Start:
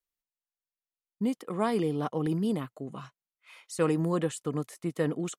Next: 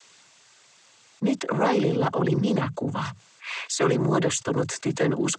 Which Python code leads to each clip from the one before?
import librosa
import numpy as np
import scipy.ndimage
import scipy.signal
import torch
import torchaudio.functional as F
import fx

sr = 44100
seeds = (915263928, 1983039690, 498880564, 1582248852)

y = fx.peak_eq(x, sr, hz=250.0, db=-5.5, octaves=2.1)
y = fx.noise_vocoder(y, sr, seeds[0], bands=16)
y = fx.env_flatten(y, sr, amount_pct=50)
y = F.gain(torch.from_numpy(y), 7.0).numpy()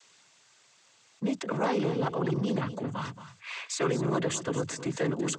y = x + 10.0 ** (-12.5 / 20.0) * np.pad(x, (int(225 * sr / 1000.0), 0))[:len(x)]
y = F.gain(torch.from_numpy(y), -6.0).numpy()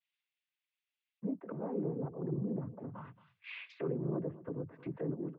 y = fx.env_lowpass_down(x, sr, base_hz=510.0, full_db=-27.5)
y = scipy.signal.sosfilt(scipy.signal.butter(4, 2700.0, 'lowpass', fs=sr, output='sos'), y)
y = fx.band_widen(y, sr, depth_pct=100)
y = F.gain(torch.from_numpy(y), -7.0).numpy()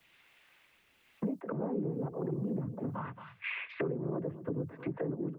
y = fx.harmonic_tremolo(x, sr, hz=1.1, depth_pct=50, crossover_hz=430.0)
y = fx.band_squash(y, sr, depth_pct=100)
y = F.gain(torch.from_numpy(y), 4.5).numpy()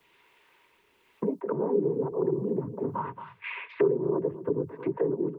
y = fx.small_body(x, sr, hz=(410.0, 950.0), ring_ms=30, db=14)